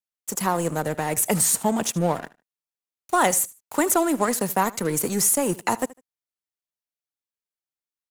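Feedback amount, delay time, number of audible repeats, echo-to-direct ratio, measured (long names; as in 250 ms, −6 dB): 22%, 76 ms, 2, −20.0 dB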